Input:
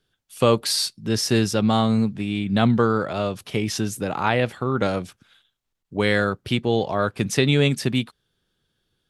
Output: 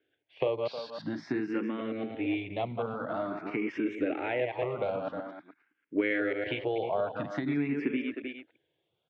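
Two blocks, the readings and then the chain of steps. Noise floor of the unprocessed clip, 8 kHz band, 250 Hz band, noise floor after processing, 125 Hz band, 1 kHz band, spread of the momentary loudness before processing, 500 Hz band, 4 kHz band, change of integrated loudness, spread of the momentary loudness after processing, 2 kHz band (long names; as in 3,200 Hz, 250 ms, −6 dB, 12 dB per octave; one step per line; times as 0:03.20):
−77 dBFS, below −35 dB, −9.5 dB, −80 dBFS, −19.0 dB, −11.0 dB, 8 LU, −8.0 dB, −19.5 dB, −10.5 dB, 8 LU, −8.5 dB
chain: delay that plays each chunk backwards 113 ms, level −5.5 dB
far-end echo of a speakerphone 310 ms, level −12 dB
downward compressor, threshold −25 dBFS, peak gain reduction 13 dB
loudspeaker in its box 190–2,700 Hz, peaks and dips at 200 Hz −9 dB, 300 Hz +9 dB, 630 Hz +4 dB, 1,200 Hz −5 dB, 2,200 Hz +5 dB
frequency shifter mixed with the dry sound +0.48 Hz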